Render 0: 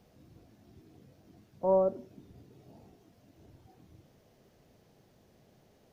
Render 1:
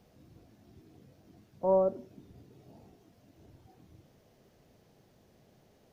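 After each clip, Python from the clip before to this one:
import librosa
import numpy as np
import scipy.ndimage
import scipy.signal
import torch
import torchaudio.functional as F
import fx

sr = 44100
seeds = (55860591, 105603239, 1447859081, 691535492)

y = x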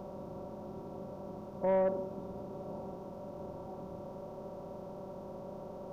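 y = fx.bin_compress(x, sr, power=0.4)
y = fx.low_shelf(y, sr, hz=260.0, db=4.0)
y = 10.0 ** (-18.5 / 20.0) * np.tanh(y / 10.0 ** (-18.5 / 20.0))
y = F.gain(torch.from_numpy(y), -3.5).numpy()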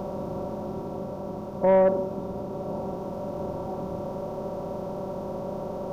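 y = fx.rider(x, sr, range_db=3, speed_s=2.0)
y = F.gain(torch.from_numpy(y), 9.0).numpy()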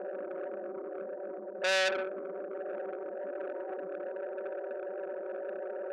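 y = fx.ladder_bandpass(x, sr, hz=540.0, resonance_pct=30)
y = fx.spec_topn(y, sr, count=16)
y = fx.transformer_sat(y, sr, knee_hz=3200.0)
y = F.gain(torch.from_numpy(y), 7.0).numpy()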